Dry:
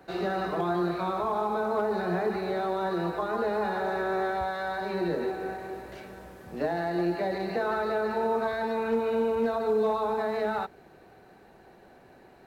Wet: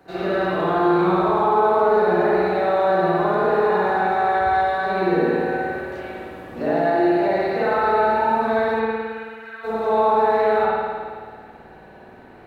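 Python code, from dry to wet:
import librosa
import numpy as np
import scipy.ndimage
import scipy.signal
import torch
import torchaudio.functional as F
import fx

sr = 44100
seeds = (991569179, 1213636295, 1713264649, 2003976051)

y = fx.ladder_highpass(x, sr, hz=1500.0, resonance_pct=65, at=(8.79, 9.63), fade=0.02)
y = fx.rev_spring(y, sr, rt60_s=1.8, pass_ms=(54,), chirp_ms=50, drr_db=-9.5)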